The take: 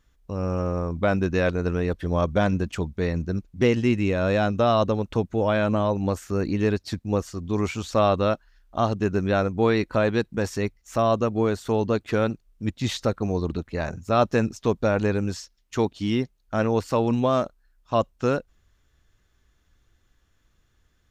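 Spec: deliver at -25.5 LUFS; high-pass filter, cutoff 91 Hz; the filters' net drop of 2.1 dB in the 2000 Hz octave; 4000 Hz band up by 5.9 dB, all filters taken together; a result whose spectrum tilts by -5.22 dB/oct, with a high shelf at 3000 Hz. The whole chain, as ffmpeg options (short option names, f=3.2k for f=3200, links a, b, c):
-af "highpass=91,equalizer=f=2k:t=o:g=-6.5,highshelf=f=3k:g=5.5,equalizer=f=4k:t=o:g=5,volume=-0.5dB"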